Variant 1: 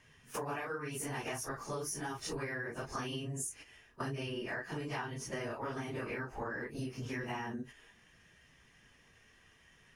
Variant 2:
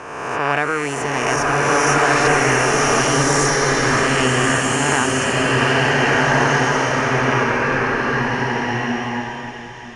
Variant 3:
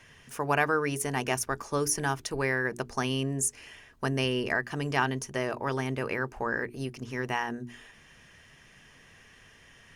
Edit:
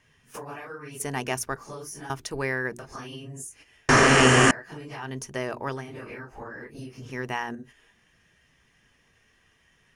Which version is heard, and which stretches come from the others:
1
1.00–1.56 s: from 3
2.10–2.79 s: from 3
3.89–4.51 s: from 2
5.08–5.80 s: from 3, crossfade 0.24 s
7.10–7.55 s: from 3

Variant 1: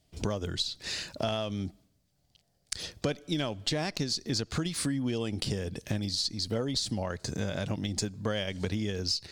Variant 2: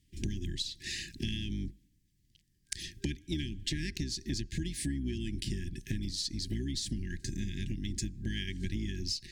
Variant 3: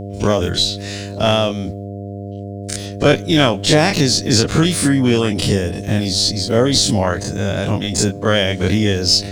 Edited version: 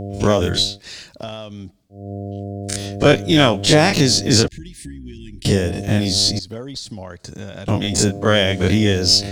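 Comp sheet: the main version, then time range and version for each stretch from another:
3
0.69–2.01 s: from 1, crossfade 0.24 s
4.48–5.45 s: from 2
6.39–7.68 s: from 1

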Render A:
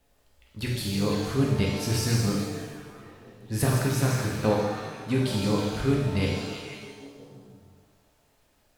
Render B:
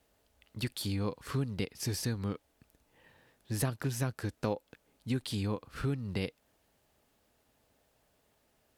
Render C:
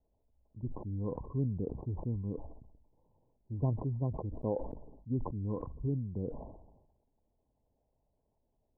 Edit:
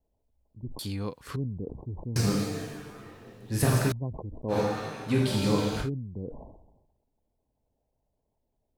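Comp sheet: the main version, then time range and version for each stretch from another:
C
0.79–1.36 s: from B
2.16–3.92 s: from A
4.53–5.85 s: from A, crossfade 0.10 s

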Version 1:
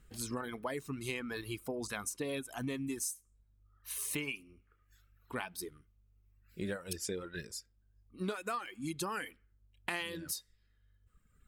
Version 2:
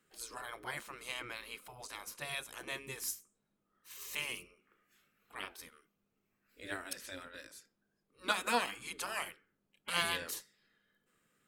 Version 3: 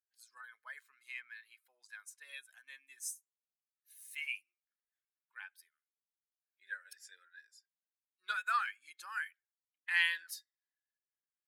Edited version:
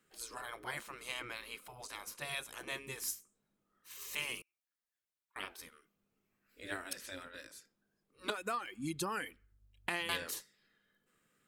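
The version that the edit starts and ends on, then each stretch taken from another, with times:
2
4.42–5.36 s: from 3
8.30–10.09 s: from 1

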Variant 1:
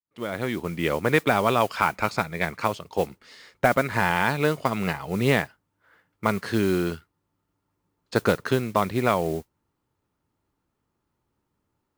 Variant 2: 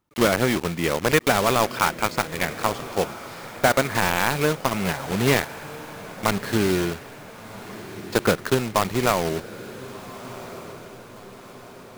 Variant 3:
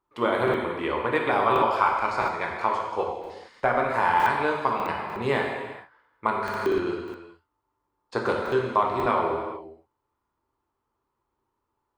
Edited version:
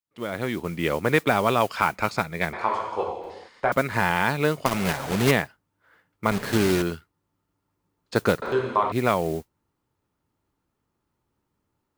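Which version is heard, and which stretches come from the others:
1
2.53–3.72 s: from 3
4.66–5.31 s: from 2
6.31–6.82 s: from 2
8.42–8.92 s: from 3

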